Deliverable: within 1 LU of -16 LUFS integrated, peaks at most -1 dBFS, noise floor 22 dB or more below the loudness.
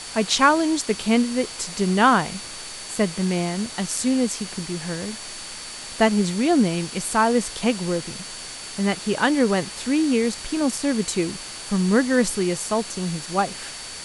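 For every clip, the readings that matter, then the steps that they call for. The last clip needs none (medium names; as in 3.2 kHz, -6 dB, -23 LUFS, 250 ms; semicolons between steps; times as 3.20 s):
steady tone 4.5 kHz; tone level -40 dBFS; noise floor -36 dBFS; noise floor target -45 dBFS; loudness -22.5 LUFS; peak level -3.5 dBFS; loudness target -16.0 LUFS
-> band-stop 4.5 kHz, Q 30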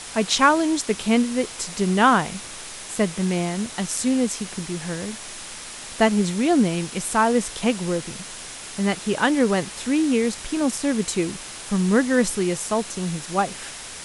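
steady tone not found; noise floor -37 dBFS; noise floor target -45 dBFS
-> noise reduction 8 dB, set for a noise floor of -37 dBFS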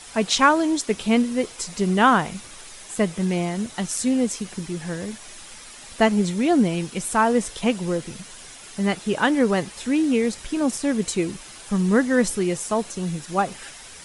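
noise floor -42 dBFS; noise floor target -45 dBFS
-> noise reduction 6 dB, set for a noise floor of -42 dBFS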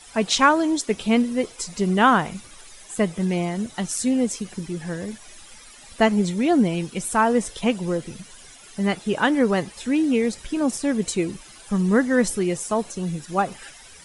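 noise floor -46 dBFS; loudness -22.5 LUFS; peak level -3.5 dBFS; loudness target -16.0 LUFS
-> trim +6.5 dB; peak limiter -1 dBFS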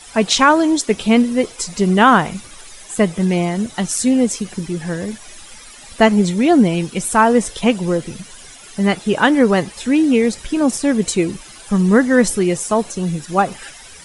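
loudness -16.5 LUFS; peak level -1.0 dBFS; noise floor -39 dBFS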